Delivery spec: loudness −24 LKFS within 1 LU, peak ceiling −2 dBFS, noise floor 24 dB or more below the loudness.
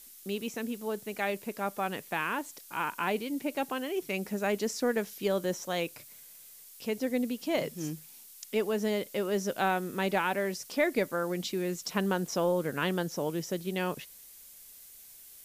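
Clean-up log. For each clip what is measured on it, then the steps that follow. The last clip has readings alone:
background noise floor −52 dBFS; target noise floor −56 dBFS; integrated loudness −32.0 LKFS; sample peak −14.0 dBFS; target loudness −24.0 LKFS
→ broadband denoise 6 dB, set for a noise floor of −52 dBFS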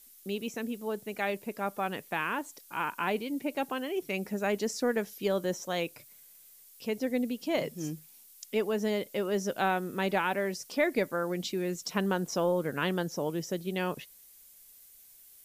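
background noise floor −56 dBFS; integrated loudness −32.0 LKFS; sample peak −14.0 dBFS; target loudness −24.0 LKFS
→ level +8 dB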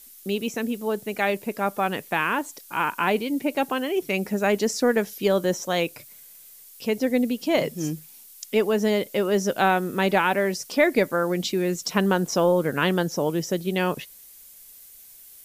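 integrated loudness −24.0 LKFS; sample peak −6.0 dBFS; background noise floor −48 dBFS

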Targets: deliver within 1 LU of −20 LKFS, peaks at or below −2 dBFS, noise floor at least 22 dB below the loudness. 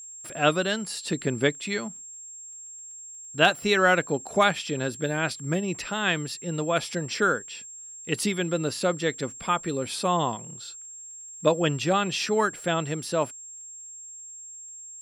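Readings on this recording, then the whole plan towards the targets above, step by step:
crackle rate 19 per second; interfering tone 7,500 Hz; level of the tone −40 dBFS; integrated loudness −26.0 LKFS; sample peak −4.5 dBFS; target loudness −20.0 LKFS
→ click removal
notch filter 7,500 Hz, Q 30
level +6 dB
brickwall limiter −2 dBFS

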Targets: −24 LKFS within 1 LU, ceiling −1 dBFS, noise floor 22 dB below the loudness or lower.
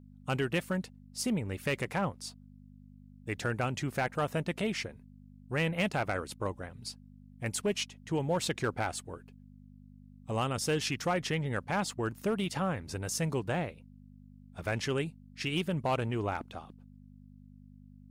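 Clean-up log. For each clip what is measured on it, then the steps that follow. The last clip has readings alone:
share of clipped samples 0.4%; peaks flattened at −22.5 dBFS; mains hum 50 Hz; hum harmonics up to 250 Hz; level of the hum −53 dBFS; integrated loudness −33.5 LKFS; sample peak −22.5 dBFS; target loudness −24.0 LKFS
→ clipped peaks rebuilt −22.5 dBFS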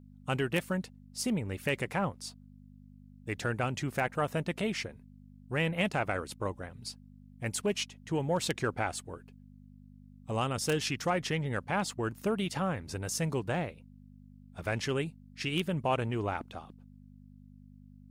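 share of clipped samples 0.0%; mains hum 50 Hz; hum harmonics up to 250 Hz; level of the hum −53 dBFS
→ hum removal 50 Hz, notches 5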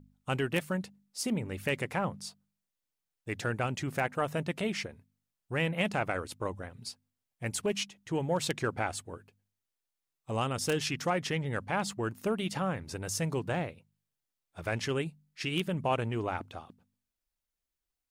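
mains hum none found; integrated loudness −33.5 LKFS; sample peak −13.5 dBFS; target loudness −24.0 LKFS
→ level +9.5 dB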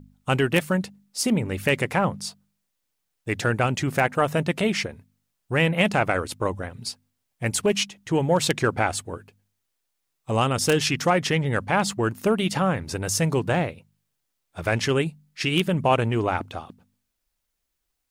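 integrated loudness −24.0 LKFS; sample peak −4.0 dBFS; background noise floor −78 dBFS

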